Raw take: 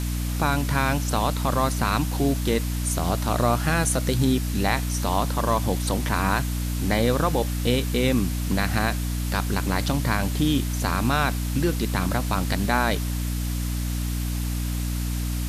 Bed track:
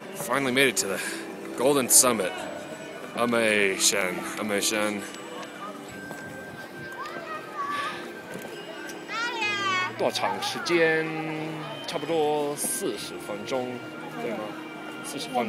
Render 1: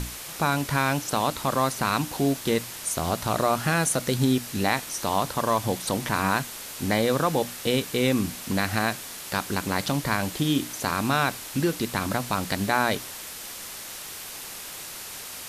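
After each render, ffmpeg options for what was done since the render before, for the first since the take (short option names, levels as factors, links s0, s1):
-af "bandreject=f=60:t=h:w=6,bandreject=f=120:t=h:w=6,bandreject=f=180:t=h:w=6,bandreject=f=240:t=h:w=6,bandreject=f=300:t=h:w=6"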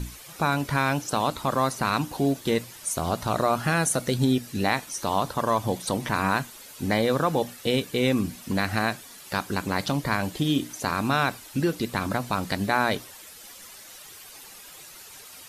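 -af "afftdn=nr=11:nf=-39"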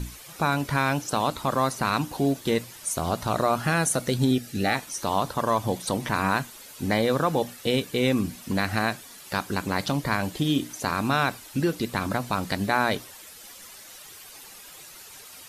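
-filter_complex "[0:a]asettb=1/sr,asplit=3[s0][s1][s2];[s0]atrim=end=4.314[s3];[s1]atrim=start=4.31:end=4.75,asetpts=PTS-STARTPTS,afade=t=in:d=0.004:c=qsin,afade=t=out:st=0.436:d=0.004:c=qsin,asuperstop=centerf=1000:order=20:qfactor=3.9[s4];[s2]atrim=start=4.746[s5];[s3][s4]acrossfade=d=0.004:c1=hsin:c2=qsin[s6];[s6][s5]acrossfade=d=0.004:c1=qsin:c2=hsin"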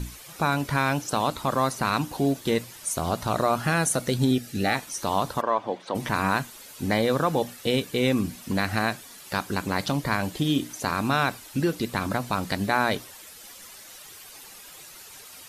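-filter_complex "[0:a]asplit=3[s0][s1][s2];[s0]afade=t=out:st=5.4:d=0.02[s3];[s1]highpass=350,lowpass=2500,afade=t=in:st=5.4:d=0.02,afade=t=out:st=5.94:d=0.02[s4];[s2]afade=t=in:st=5.94:d=0.02[s5];[s3][s4][s5]amix=inputs=3:normalize=0"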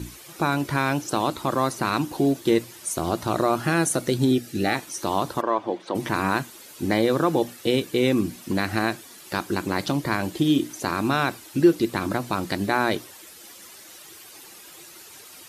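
-af "highpass=71,equalizer=f=340:t=o:w=0.33:g=11"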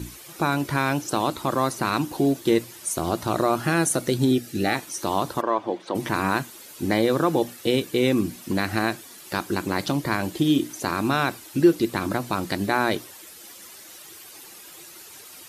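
-af "highshelf=f=11000:g=3.5"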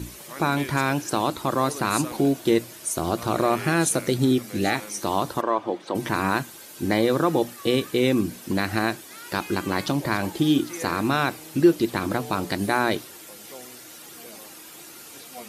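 -filter_complex "[1:a]volume=0.178[s0];[0:a][s0]amix=inputs=2:normalize=0"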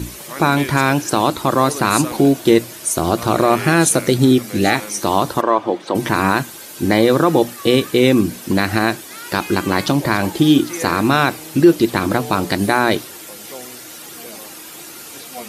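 -af "volume=2.51,alimiter=limit=0.891:level=0:latency=1"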